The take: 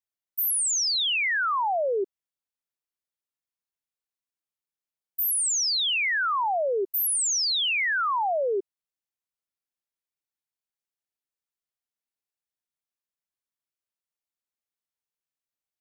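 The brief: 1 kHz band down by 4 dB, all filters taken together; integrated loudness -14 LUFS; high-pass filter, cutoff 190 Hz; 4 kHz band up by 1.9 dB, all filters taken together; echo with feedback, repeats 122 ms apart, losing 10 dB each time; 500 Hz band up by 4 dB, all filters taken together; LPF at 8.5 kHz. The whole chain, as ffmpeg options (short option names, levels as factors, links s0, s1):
-af "highpass=190,lowpass=8500,equalizer=f=500:t=o:g=7,equalizer=f=1000:t=o:g=-8,equalizer=f=4000:t=o:g=3,aecho=1:1:122|244|366|488:0.316|0.101|0.0324|0.0104,volume=2.82"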